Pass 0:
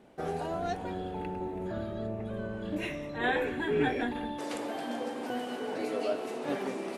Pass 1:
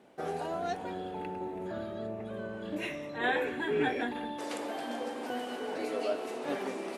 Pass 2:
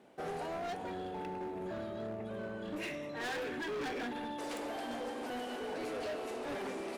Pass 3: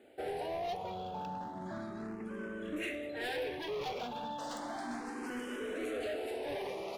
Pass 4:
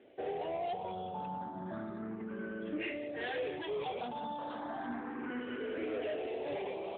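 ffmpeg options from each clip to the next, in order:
-af "highpass=f=250:p=1"
-af "asoftclip=type=hard:threshold=-34.5dB,volume=-1.5dB"
-filter_complex "[0:a]asplit=2[a][b];[b]afreqshift=0.33[c];[a][c]amix=inputs=2:normalize=1,volume=3dB"
-af "volume=1dB" -ar 8000 -c:a libopencore_amrnb -b:a 12200

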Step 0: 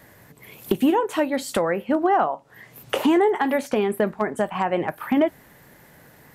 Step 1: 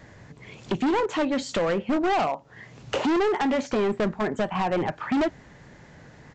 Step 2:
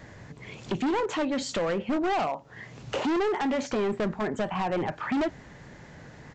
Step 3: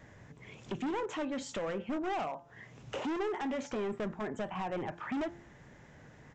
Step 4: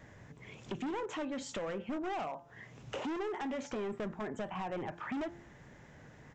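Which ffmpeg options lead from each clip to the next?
-af "lowshelf=f=180:g=8,aresample=16000,volume=20.5dB,asoftclip=hard,volume=-20.5dB,aresample=44100"
-af "alimiter=level_in=1dB:limit=-24dB:level=0:latency=1:release=16,volume=-1dB,volume=1.5dB"
-af "equalizer=f=4.4k:w=4.7:g=-7.5,bandreject=f=171.8:t=h:w=4,bandreject=f=343.6:t=h:w=4,bandreject=f=515.4:t=h:w=4,bandreject=f=687.2:t=h:w=4,bandreject=f=859:t=h:w=4,bandreject=f=1.0308k:t=h:w=4,bandreject=f=1.2026k:t=h:w=4,bandreject=f=1.3744k:t=h:w=4,bandreject=f=1.5462k:t=h:w=4,bandreject=f=1.718k:t=h:w=4,volume=-8dB"
-af "acompressor=threshold=-37dB:ratio=2"

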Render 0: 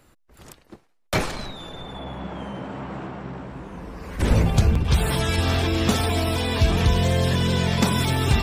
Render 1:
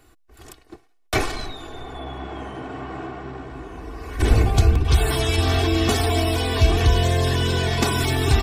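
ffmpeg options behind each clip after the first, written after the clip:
-af "aecho=1:1:2.7:0.72"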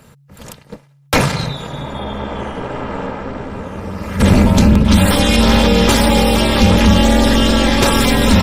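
-af "apsyclip=13.5dB,aeval=exprs='val(0)*sin(2*PI*140*n/s)':c=same,volume=-1.5dB"

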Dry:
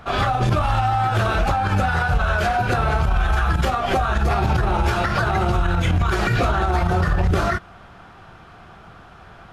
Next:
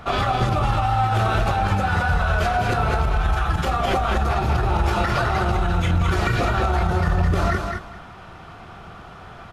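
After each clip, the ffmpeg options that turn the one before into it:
-filter_complex "[0:a]bandreject=f=1.6k:w=16,acompressor=threshold=-21dB:ratio=4,asplit=2[a][b];[b]aecho=0:1:208|416|624:0.562|0.101|0.0182[c];[a][c]amix=inputs=2:normalize=0,volume=2.5dB"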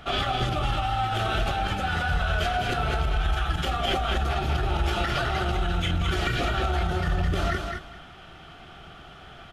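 -af "equalizer=f=100:t=o:w=0.33:g=-10,equalizer=f=200:t=o:w=0.33:g=-5,equalizer=f=500:t=o:w=0.33:g=-5,equalizer=f=1k:t=o:w=0.33:g=-11,equalizer=f=3.15k:t=o:w=0.33:g=9,volume=-3.5dB"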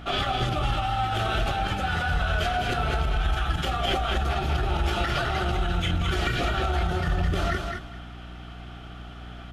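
-af "aeval=exprs='val(0)+0.01*(sin(2*PI*60*n/s)+sin(2*PI*2*60*n/s)/2+sin(2*PI*3*60*n/s)/3+sin(2*PI*4*60*n/s)/4+sin(2*PI*5*60*n/s)/5)':c=same"

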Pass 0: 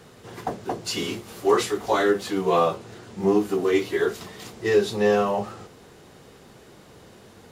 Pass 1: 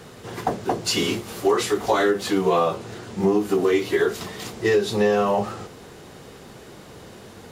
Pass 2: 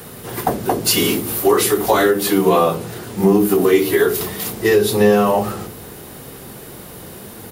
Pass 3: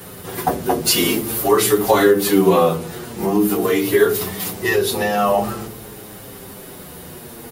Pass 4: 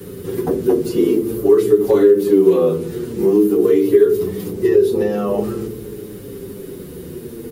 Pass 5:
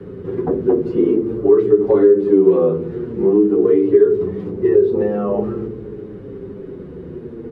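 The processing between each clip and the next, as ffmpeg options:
-af "acompressor=threshold=-22dB:ratio=5,volume=6dB"
-filter_complex "[0:a]highshelf=f=10k:g=3.5,acrossover=split=400|7000[a][b][c];[a]aecho=1:1:67.06|169.1:0.708|0.355[d];[c]aexciter=amount=2.6:drive=9.5:freq=9.1k[e];[d][b][e]amix=inputs=3:normalize=0,volume=5dB"
-filter_complex "[0:a]asplit=2[a][b];[b]adelay=7.4,afreqshift=-0.47[c];[a][c]amix=inputs=2:normalize=1,volume=2.5dB"
-filter_complex "[0:a]asoftclip=type=hard:threshold=-5.5dB,lowshelf=f=540:t=q:w=3:g=9,acrossover=split=320|1200[a][b][c];[a]acompressor=threshold=-19dB:ratio=4[d];[b]acompressor=threshold=-5dB:ratio=4[e];[c]acompressor=threshold=-33dB:ratio=4[f];[d][e][f]amix=inputs=3:normalize=0,volume=-5dB"
-af "lowpass=1.5k"

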